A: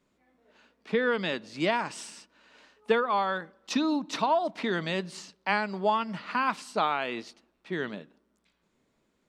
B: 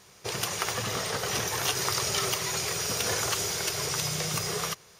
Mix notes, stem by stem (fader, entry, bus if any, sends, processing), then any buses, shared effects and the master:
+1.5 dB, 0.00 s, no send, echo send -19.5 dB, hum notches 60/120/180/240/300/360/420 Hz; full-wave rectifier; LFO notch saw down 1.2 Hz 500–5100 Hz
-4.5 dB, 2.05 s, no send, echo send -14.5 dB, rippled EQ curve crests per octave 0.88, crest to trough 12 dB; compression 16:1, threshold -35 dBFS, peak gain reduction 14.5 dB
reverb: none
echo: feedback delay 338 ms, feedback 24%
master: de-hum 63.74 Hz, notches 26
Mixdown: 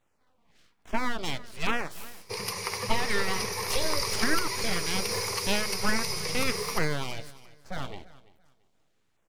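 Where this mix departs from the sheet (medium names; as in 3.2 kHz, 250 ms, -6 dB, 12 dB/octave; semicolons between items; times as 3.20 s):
stem B: missing compression 16:1, threshold -35 dBFS, peak gain reduction 14.5 dB; master: missing de-hum 63.74 Hz, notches 26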